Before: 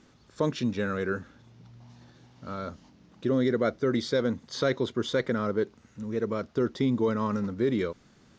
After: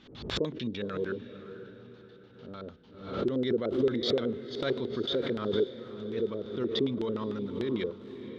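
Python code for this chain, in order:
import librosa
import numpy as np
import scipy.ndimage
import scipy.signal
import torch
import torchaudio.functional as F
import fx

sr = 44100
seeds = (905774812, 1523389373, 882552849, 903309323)

y = fx.filter_lfo_lowpass(x, sr, shape='square', hz=6.7, low_hz=410.0, high_hz=3500.0, q=3.6)
y = fx.echo_diffused(y, sr, ms=525, feedback_pct=42, wet_db=-11.0)
y = fx.pre_swell(y, sr, db_per_s=79.0)
y = y * librosa.db_to_amplitude(-8.5)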